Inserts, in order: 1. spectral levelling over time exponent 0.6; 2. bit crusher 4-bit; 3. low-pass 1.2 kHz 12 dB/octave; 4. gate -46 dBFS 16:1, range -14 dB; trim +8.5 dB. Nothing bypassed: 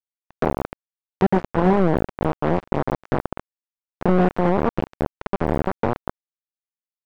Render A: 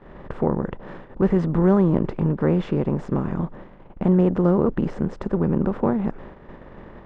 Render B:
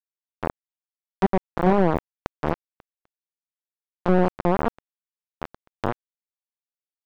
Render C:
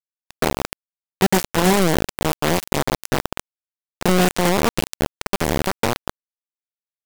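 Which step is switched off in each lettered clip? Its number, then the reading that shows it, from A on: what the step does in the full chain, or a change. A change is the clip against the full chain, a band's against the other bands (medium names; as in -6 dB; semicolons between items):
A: 2, 1 kHz band -8.0 dB; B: 1, momentary loudness spread change +9 LU; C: 3, 4 kHz band +18.5 dB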